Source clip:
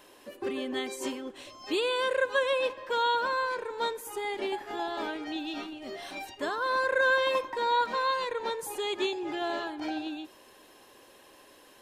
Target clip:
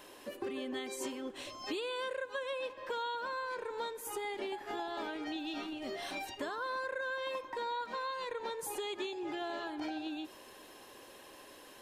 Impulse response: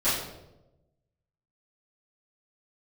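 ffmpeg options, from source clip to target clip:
-af "acompressor=threshold=-38dB:ratio=6,volume=1.5dB"

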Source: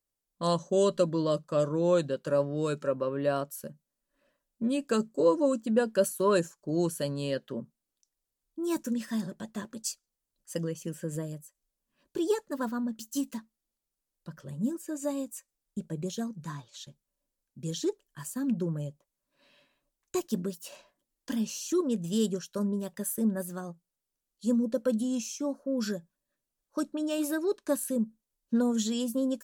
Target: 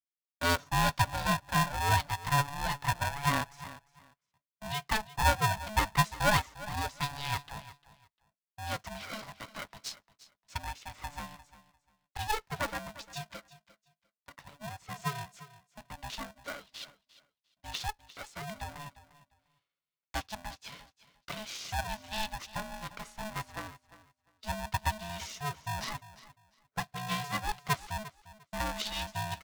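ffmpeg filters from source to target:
-filter_complex "[0:a]highpass=680,agate=range=-21dB:threshold=-57dB:ratio=16:detection=peak,lowpass=f=4.6k:w=0.5412,lowpass=f=4.6k:w=1.3066,asplit=2[a][b];[b]aecho=0:1:350|700:0.141|0.0283[c];[a][c]amix=inputs=2:normalize=0,aeval=exprs='val(0)*sgn(sin(2*PI*430*n/s))':c=same,volume=4dB"

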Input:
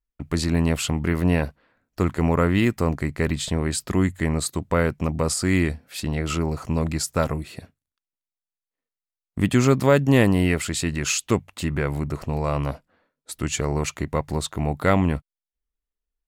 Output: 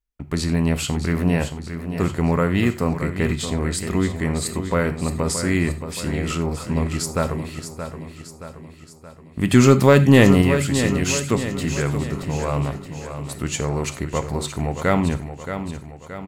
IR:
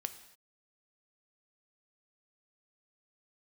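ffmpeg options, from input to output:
-filter_complex "[0:a]asettb=1/sr,asplit=3[a][b][c];[a]atrim=end=9.504[d];[b]atrim=start=9.5:end=10.42,asetpts=PTS-STARTPTS,afade=t=in:d=0.004:c=qsin,afade=t=out:st=0.916:d=0.004:c=qsin,acontrast=48[e];[c]atrim=start=10.416[f];[d][e]acrossfade=d=0.004:c1=hsin:c2=qsin[g];[g][f]acrossfade=d=0.004:c1=qsin:c2=hsin,aecho=1:1:624|1248|1872|2496|3120|3744:0.335|0.174|0.0906|0.0471|0.0245|0.0127[h];[1:a]atrim=start_sample=2205,atrim=end_sample=4410[i];[h][i]afir=irnorm=-1:irlink=0,volume=1.5dB"

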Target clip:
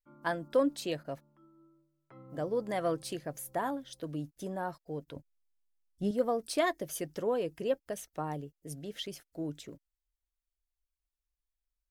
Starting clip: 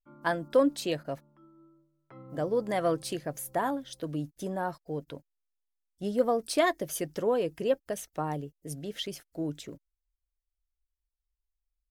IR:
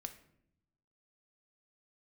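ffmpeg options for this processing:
-filter_complex "[0:a]asettb=1/sr,asplit=3[a][b][c];[a]atrim=end=5.164[d];[b]atrim=start=5.16:end=6.11,asetpts=PTS-STARTPTS,afade=t=in:d=0.004:c=qsin,afade=t=out:st=0.946:d=0.004:c=qsin,lowshelf=f=240:g=11.5[e];[c]atrim=start=6.106[f];[d][e]acrossfade=d=0.004:c1=hsin:c2=qsin[g];[g][f]acrossfade=d=0.004:c1=qsin:c2=hsin,volume=-4dB"

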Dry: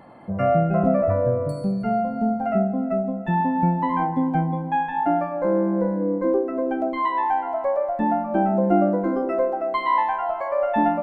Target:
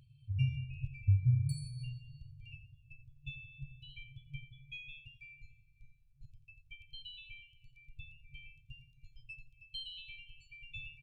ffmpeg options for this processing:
-af "aecho=1:1:87|174|261|348:0.251|0.108|0.0464|0.02,afftfilt=real='re*(1-between(b*sr/4096,140,2300))':imag='im*(1-between(b*sr/4096,140,2300))':win_size=4096:overlap=0.75,afftdn=nr=14:nf=-58"

